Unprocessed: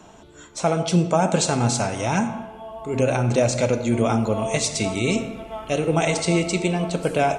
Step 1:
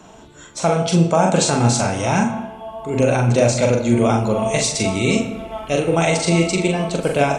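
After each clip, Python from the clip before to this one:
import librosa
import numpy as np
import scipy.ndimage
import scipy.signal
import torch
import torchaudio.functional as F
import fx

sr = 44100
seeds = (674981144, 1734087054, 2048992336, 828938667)

y = fx.doubler(x, sr, ms=42.0, db=-4.0)
y = F.gain(torch.from_numpy(y), 2.5).numpy()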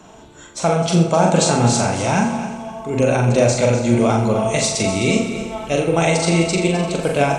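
y = fx.echo_heads(x, sr, ms=86, heads='first and third', feedback_pct=49, wet_db=-12.5)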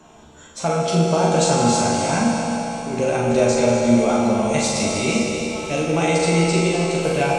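y = fx.doubler(x, sr, ms=13.0, db=-5.0)
y = fx.rev_schroeder(y, sr, rt60_s=3.6, comb_ms=26, drr_db=0.5)
y = F.gain(torch.from_numpy(y), -5.5).numpy()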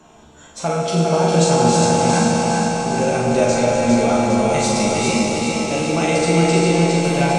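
y = fx.echo_feedback(x, sr, ms=405, feedback_pct=58, wet_db=-4)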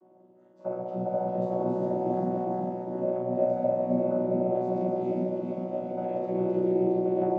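y = fx.chord_vocoder(x, sr, chord='bare fifth', root=47)
y = fx.double_bandpass(y, sr, hz=450.0, octaves=0.83)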